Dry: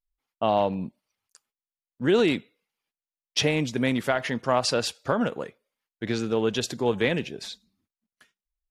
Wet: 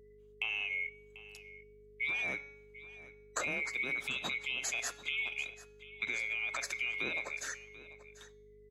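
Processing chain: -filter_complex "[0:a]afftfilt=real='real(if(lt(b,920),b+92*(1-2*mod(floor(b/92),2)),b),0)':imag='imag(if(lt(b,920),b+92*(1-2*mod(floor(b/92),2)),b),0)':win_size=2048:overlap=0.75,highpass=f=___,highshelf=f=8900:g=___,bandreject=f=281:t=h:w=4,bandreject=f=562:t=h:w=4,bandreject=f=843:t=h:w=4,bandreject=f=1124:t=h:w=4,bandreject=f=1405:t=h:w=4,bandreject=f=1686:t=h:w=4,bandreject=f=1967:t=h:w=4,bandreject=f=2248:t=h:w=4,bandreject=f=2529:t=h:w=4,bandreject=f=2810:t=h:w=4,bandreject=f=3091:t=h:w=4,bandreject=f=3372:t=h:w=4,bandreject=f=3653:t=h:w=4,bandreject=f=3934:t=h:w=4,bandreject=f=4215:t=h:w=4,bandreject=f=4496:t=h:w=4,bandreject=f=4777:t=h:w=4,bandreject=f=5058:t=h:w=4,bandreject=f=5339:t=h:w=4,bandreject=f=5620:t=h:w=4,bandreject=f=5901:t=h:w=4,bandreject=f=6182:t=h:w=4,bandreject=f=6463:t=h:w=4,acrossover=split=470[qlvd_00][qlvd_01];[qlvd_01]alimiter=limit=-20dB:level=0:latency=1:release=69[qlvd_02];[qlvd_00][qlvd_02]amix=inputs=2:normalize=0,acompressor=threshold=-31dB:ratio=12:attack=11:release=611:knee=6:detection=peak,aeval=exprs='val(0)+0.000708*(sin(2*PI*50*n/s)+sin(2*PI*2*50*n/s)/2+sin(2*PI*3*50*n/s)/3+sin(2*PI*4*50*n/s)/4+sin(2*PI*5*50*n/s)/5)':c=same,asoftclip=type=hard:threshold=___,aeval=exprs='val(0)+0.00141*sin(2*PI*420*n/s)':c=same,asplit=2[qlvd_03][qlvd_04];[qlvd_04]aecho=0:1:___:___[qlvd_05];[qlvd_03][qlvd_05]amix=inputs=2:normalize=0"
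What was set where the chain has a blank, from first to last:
200, -6, -21.5dB, 741, 0.133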